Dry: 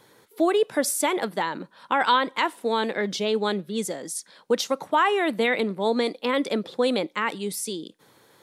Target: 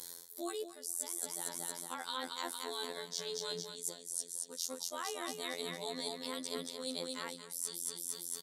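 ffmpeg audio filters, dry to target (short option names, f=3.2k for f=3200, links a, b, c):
-af "aecho=1:1:229|458|687|916|1145|1374:0.501|0.261|0.136|0.0705|0.0366|0.0191,aexciter=amount=10.5:drive=3.2:freq=3.9k,afftfilt=real='hypot(re,im)*cos(PI*b)':imag='0':win_size=2048:overlap=0.75,areverse,acompressor=threshold=-38dB:ratio=8,areverse,volume=1.5dB"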